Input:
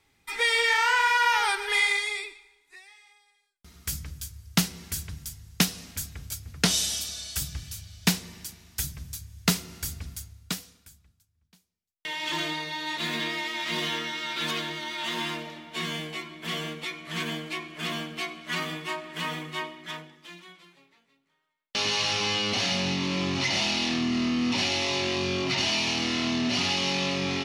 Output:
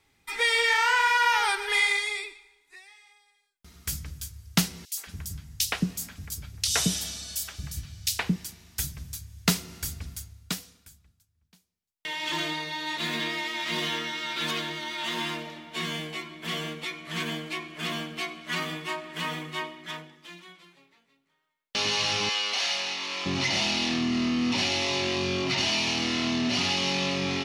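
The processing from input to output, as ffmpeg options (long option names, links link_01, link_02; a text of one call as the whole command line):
ffmpeg -i in.wav -filter_complex "[0:a]asettb=1/sr,asplit=3[link_01][link_02][link_03];[link_01]atrim=end=4.854[link_04];[link_02]atrim=start=4.85:end=8.36,asetpts=PTS-STARTPTS,afade=type=in:duration=0.004:curve=qsin,afade=type=out:start_time=3.506:duration=0.004:curve=qsin,acrossover=split=420|3100[link_05][link_06][link_07];[link_06]adelay=120[link_08];[link_05]adelay=220[link_09];[link_09][link_08][link_07]amix=inputs=3:normalize=0,atrim=end_sample=154791[link_10];[link_03]atrim=start=8.356[link_11];[link_04][link_10]acrossfade=duration=0.004:curve1=hsin:curve2=qsin[link_12];[link_12][link_11]acrossfade=duration=0.004:curve1=qsin:curve2=hsin,asettb=1/sr,asplit=3[link_13][link_14][link_15];[link_13]atrim=end=22.294[link_16];[link_14]atrim=start=22.29:end=23.26,asetpts=PTS-STARTPTS,afade=type=in:duration=0.004:curve=qsin,afade=type=out:start_time=0.966:duration=0.004:curve=qsin,highpass=740[link_17];[link_15]atrim=start=23.256[link_18];[link_16][link_17]acrossfade=duration=0.004:curve1=hsin:curve2=qsin[link_19];[link_19][link_18]acrossfade=duration=0.004:curve1=qsin:curve2=hsin" out.wav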